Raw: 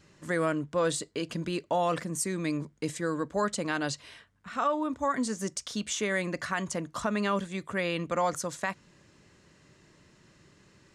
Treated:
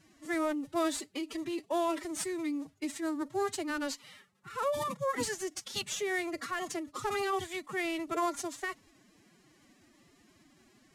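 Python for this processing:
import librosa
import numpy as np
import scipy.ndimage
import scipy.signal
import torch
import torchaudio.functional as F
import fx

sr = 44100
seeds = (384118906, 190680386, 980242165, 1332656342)

y = fx.cvsd(x, sr, bps=64000)
y = fx.pitch_keep_formants(y, sr, semitones=11.5)
y = F.gain(torch.from_numpy(y), -3.0).numpy()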